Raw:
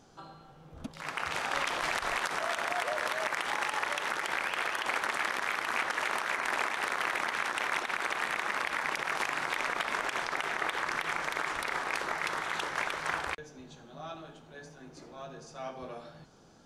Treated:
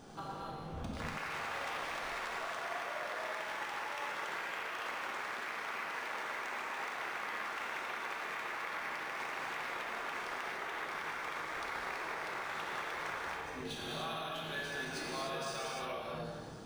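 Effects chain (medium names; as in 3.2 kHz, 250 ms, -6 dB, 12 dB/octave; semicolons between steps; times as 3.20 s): 13.65–15.92 s: peaking EQ 2.9 kHz +14.5 dB 2.7 oct; compression 20:1, threshold -45 dBFS, peak gain reduction 19.5 dB; gated-style reverb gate 330 ms flat, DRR -4 dB; decimation joined by straight lines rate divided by 3×; trim +4.5 dB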